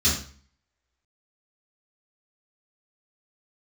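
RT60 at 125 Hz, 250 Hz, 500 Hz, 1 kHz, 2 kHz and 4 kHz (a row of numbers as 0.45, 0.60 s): 0.55, 0.55, 0.45, 0.45, 0.45, 0.40 s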